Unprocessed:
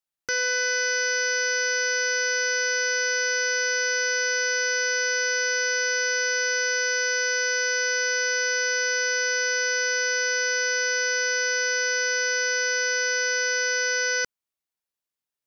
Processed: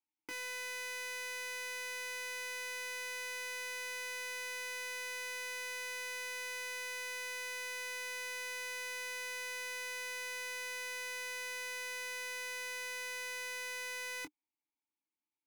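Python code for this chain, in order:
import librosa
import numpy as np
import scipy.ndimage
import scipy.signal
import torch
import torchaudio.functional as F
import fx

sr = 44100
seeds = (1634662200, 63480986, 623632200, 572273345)

p1 = fx.vowel_filter(x, sr, vowel='u')
p2 = (np.mod(10.0 ** (49.5 / 20.0) * p1 + 1.0, 2.0) - 1.0) / 10.0 ** (49.5 / 20.0)
p3 = p1 + F.gain(torch.from_numpy(p2), -3.0).numpy()
p4 = fx.doubler(p3, sr, ms=22.0, db=-9.0)
y = F.gain(torch.from_numpy(p4), 4.0).numpy()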